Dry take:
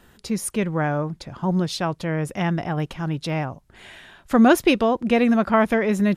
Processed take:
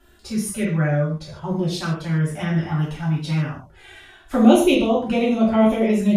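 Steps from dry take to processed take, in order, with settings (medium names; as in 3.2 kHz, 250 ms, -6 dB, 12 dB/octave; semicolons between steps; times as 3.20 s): touch-sensitive flanger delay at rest 3 ms, full sweep at -16 dBFS; gated-style reverb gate 180 ms falling, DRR -6 dB; trim -4.5 dB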